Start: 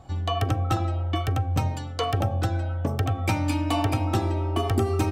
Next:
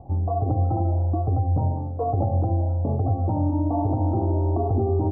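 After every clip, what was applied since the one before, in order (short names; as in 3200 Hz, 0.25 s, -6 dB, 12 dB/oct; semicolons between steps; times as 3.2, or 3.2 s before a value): limiter -19 dBFS, peak gain reduction 7 dB; steep low-pass 890 Hz 48 dB/oct; gain +5 dB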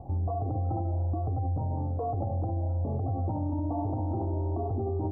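limiter -24 dBFS, peak gain reduction 10.5 dB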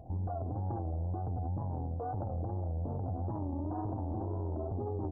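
added harmonics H 2 -12 dB, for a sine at -23.5 dBFS; LPF 1100 Hz 24 dB/oct; wow and flutter 110 cents; gain -6 dB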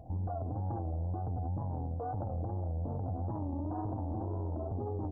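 notch 380 Hz, Q 12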